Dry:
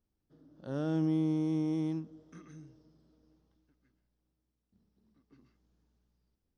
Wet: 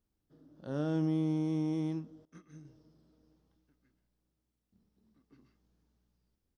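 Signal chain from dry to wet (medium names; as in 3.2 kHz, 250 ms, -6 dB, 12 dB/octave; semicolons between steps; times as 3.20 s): doubling 27 ms -14 dB; 2.25–2.65 s: upward expansion 2.5:1, over -60 dBFS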